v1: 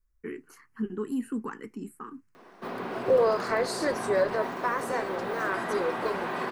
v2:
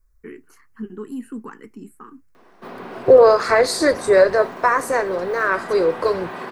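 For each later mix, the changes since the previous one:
second voice +12.0 dB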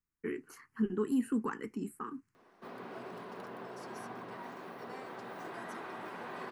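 second voice: muted; background -9.5 dB; reverb: off

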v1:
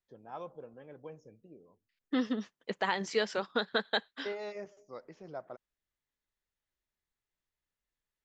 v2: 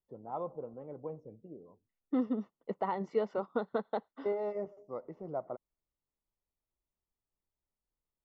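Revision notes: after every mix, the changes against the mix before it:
first voice +5.5 dB; master: add polynomial smoothing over 65 samples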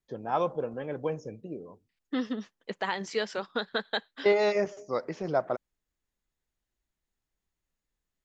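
first voice +10.0 dB; master: remove polynomial smoothing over 65 samples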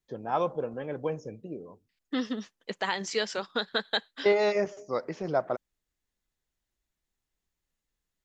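second voice: add high shelf 3900 Hz +9.5 dB

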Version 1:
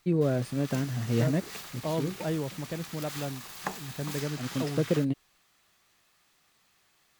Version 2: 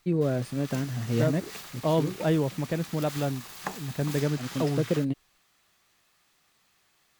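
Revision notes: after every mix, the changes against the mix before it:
second voice +6.5 dB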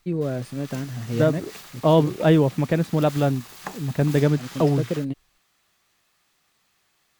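second voice +8.0 dB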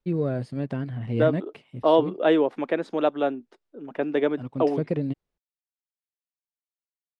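second voice: add HPF 300 Hz 24 dB/oct; background: muted; master: add air absorption 82 m

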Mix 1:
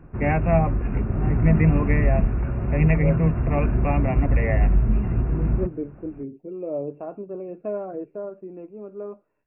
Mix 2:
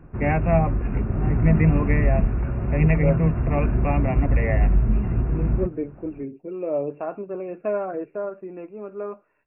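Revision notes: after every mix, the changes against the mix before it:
second voice: add bell 2000 Hz +13.5 dB 2.4 oct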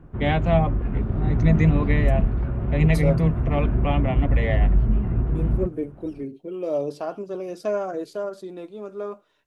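background: add air absorption 410 m; master: remove brick-wall FIR low-pass 2800 Hz

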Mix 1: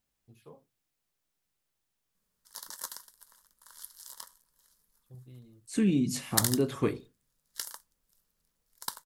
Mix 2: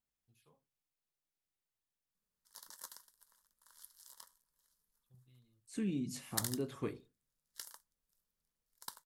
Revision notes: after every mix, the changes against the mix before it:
first voice: add passive tone stack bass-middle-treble 5-5-5; second voice -11.0 dB; background -10.5 dB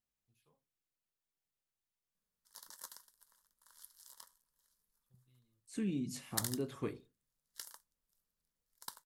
first voice -5.0 dB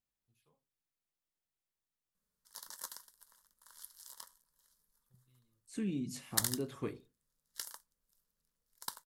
background +5.0 dB

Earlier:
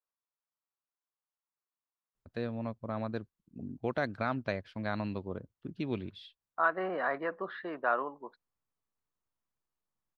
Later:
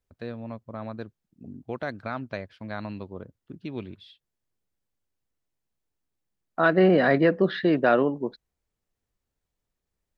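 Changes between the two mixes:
first voice: entry -2.15 s; second voice: remove band-pass 1100 Hz, Q 3

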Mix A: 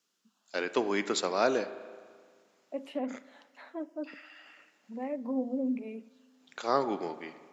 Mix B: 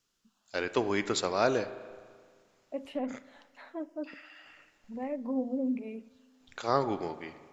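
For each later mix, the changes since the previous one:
master: remove HPF 180 Hz 24 dB/oct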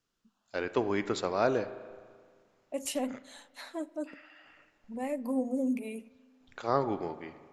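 first voice: add high shelf 2700 Hz -9.5 dB; second voice: remove air absorption 490 m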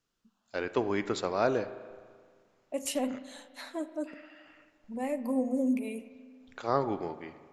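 second voice: send +10.0 dB

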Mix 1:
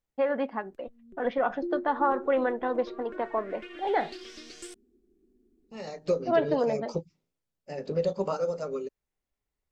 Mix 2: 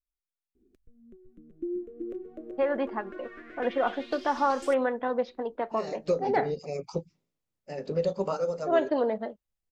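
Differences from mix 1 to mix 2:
first voice: entry +2.40 s; background: add bell 8100 Hz -5 dB 0.26 oct

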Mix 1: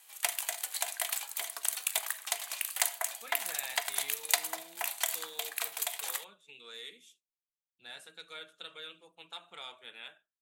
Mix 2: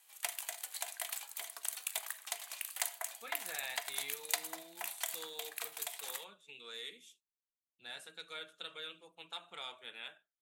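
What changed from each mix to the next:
background -7.0 dB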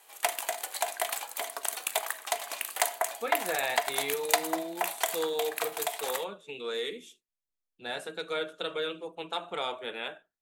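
master: remove passive tone stack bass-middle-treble 5-5-5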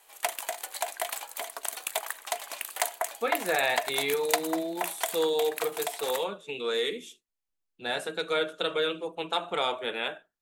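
speech +5.0 dB; background: send -9.0 dB

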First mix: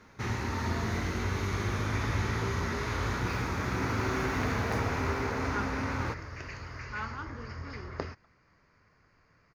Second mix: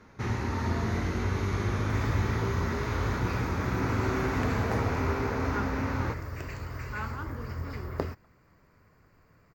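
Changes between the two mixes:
second sound: remove rippled Chebyshev low-pass 6700 Hz, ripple 3 dB; master: add tilt shelf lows +3 dB, about 1300 Hz

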